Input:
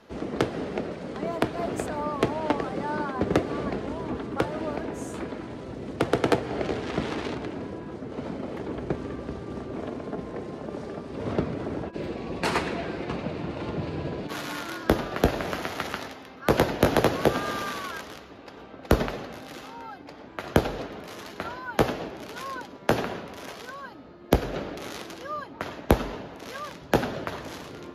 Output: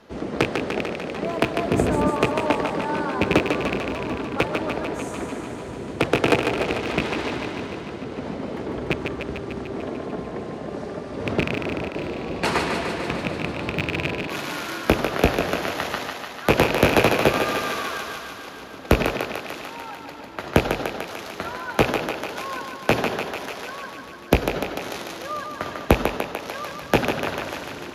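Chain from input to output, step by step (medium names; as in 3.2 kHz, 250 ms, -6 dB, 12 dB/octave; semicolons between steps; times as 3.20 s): rattle on loud lows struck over -28 dBFS, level -13 dBFS; 1.71–2.11 s: bass shelf 430 Hz +12 dB; thinning echo 148 ms, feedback 74%, high-pass 330 Hz, level -5 dB; trim +3 dB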